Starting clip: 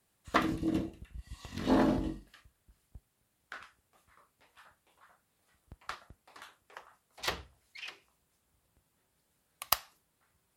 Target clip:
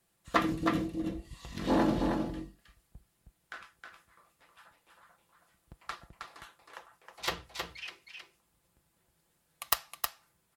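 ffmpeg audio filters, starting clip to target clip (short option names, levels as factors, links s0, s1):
-af "aecho=1:1:5.9:0.38,aeval=exprs='(mod(2.37*val(0)+1,2)-1)/2.37':c=same,aecho=1:1:316:0.562"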